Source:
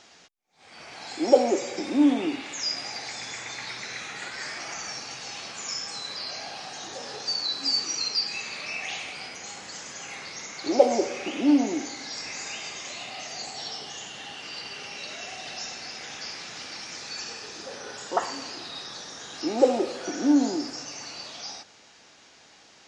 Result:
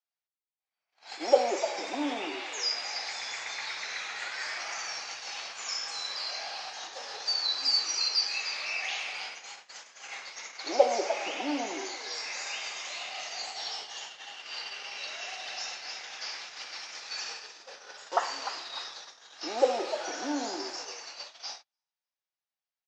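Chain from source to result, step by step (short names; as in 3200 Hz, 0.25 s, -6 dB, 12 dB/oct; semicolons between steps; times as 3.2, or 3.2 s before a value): three-band isolator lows -19 dB, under 510 Hz, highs -22 dB, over 7300 Hz; frequency-shifting echo 0.3 s, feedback 37%, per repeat +95 Hz, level -10.5 dB; gate -39 dBFS, range -44 dB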